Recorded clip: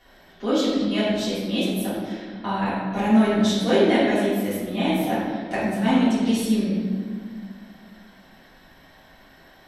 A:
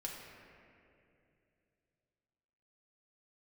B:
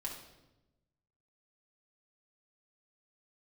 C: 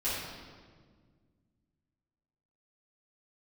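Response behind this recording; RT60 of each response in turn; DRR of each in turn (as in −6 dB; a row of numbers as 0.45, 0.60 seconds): C; 2.7, 1.0, 1.7 seconds; −2.5, −3.0, −12.0 decibels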